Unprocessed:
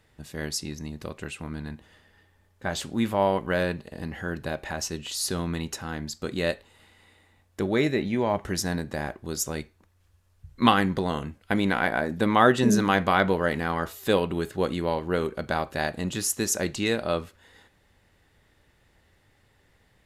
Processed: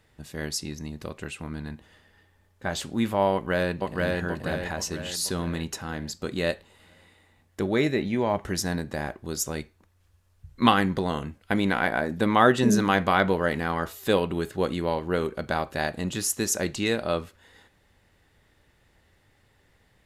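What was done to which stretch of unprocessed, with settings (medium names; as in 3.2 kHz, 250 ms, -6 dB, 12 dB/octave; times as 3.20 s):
3.33–4.19 s: echo throw 480 ms, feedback 50%, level -1.5 dB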